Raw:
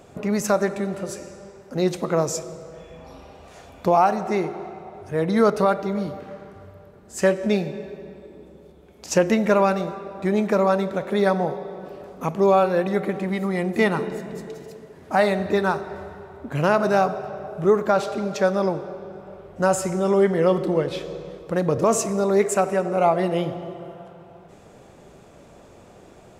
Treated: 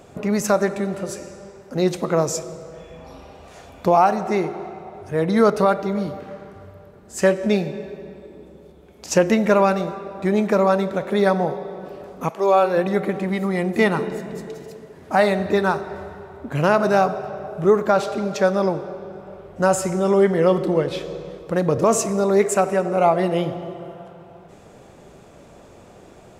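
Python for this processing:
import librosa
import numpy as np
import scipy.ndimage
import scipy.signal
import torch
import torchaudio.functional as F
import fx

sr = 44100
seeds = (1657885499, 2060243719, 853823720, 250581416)

y = fx.highpass(x, sr, hz=fx.line((12.28, 670.0), (12.76, 210.0)), slope=12, at=(12.28, 12.76), fade=0.02)
y = F.gain(torch.from_numpy(y), 2.0).numpy()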